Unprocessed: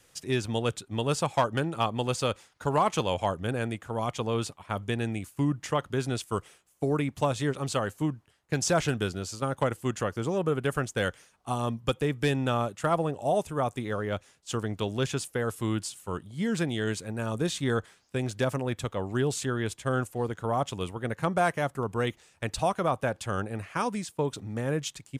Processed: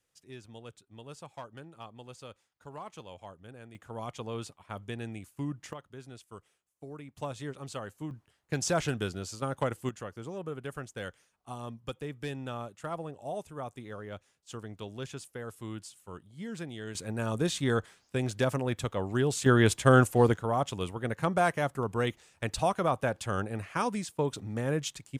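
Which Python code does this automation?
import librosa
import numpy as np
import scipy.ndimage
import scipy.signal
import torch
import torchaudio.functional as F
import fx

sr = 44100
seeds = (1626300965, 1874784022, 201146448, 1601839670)

y = fx.gain(x, sr, db=fx.steps((0.0, -19.0), (3.75, -8.5), (5.73, -17.5), (7.17, -10.5), (8.11, -3.5), (9.89, -11.0), (16.95, -0.5), (19.46, 8.0), (20.37, -1.0)))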